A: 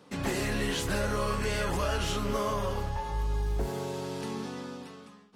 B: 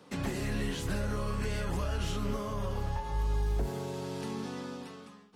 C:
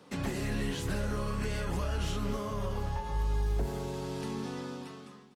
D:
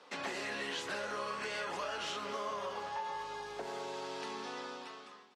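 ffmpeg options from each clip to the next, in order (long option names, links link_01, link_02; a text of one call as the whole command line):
ffmpeg -i in.wav -filter_complex "[0:a]acrossover=split=260[link_01][link_02];[link_02]acompressor=threshold=-37dB:ratio=6[link_03];[link_01][link_03]amix=inputs=2:normalize=0" out.wav
ffmpeg -i in.wav -af "aecho=1:1:246|492|738|984:0.158|0.0777|0.0381|0.0186" out.wav
ffmpeg -i in.wav -af "highpass=600,lowpass=5600,volume=2.5dB" out.wav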